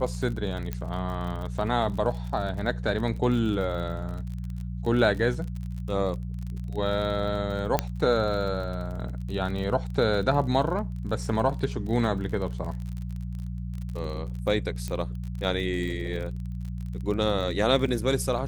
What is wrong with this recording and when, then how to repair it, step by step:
surface crackle 40 per second −34 dBFS
mains hum 60 Hz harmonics 3 −33 dBFS
0:00.73: click −17 dBFS
0:07.79: click −8 dBFS
0:14.88: click −19 dBFS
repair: click removal
hum removal 60 Hz, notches 3

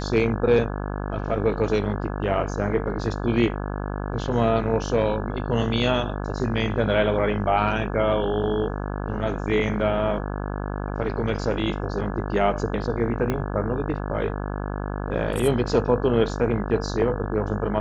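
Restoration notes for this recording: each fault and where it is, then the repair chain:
mains buzz 50 Hz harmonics 34 −29 dBFS
0:13.30: click −12 dBFS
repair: click removal
hum removal 50 Hz, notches 34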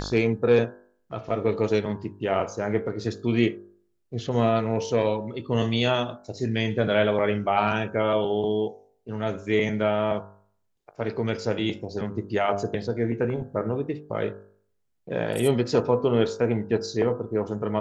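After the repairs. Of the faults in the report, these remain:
0:13.30: click

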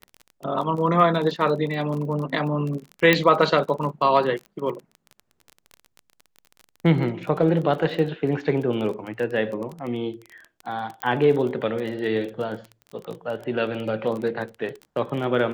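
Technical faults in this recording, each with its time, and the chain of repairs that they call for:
surface crackle 26 per second −30 dBFS
0:03.13: click −4 dBFS
0:11.02: click −11 dBFS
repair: click removal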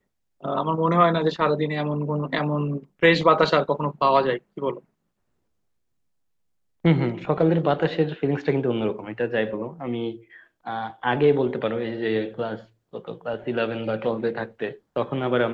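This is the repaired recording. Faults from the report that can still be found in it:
none of them is left

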